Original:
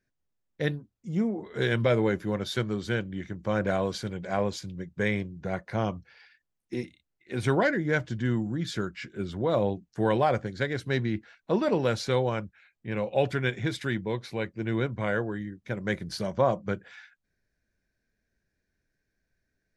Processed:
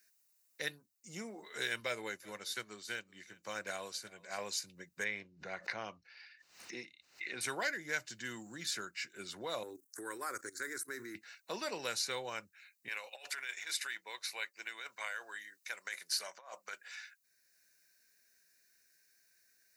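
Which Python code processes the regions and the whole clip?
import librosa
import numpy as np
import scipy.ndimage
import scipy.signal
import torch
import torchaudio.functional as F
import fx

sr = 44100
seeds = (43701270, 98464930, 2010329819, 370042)

y = fx.chain(x, sr, fx.echo_single(ms=378, db=-21.0),
    fx.upward_expand(threshold_db=-41.0, expansion=1.5), at=(1.8, 4.38))
y = fx.chain(y, sr, fx.air_absorb(metres=190.0),
    fx.pre_swell(db_per_s=100.0), at=(5.04, 7.41))
y = fx.chain(y, sr, fx.curve_eq(hz=(110.0, 180.0, 260.0, 380.0, 690.0, 1300.0, 2000.0, 2900.0, 4800.0, 9000.0), db=(0, -12, 10, 12, -8, 12, 2, -15, 0, 15)),
    fx.level_steps(step_db=15), at=(9.63, 11.15))
y = fx.chain(y, sr, fx.over_compress(threshold_db=-29.0, ratio=-0.5),
    fx.highpass(hz=810.0, slope=12), at=(12.88, 16.87))
y = np.diff(y, prepend=0.0)
y = fx.notch(y, sr, hz=3300.0, q=5.3)
y = fx.band_squash(y, sr, depth_pct=40)
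y = y * 10.0 ** (7.5 / 20.0)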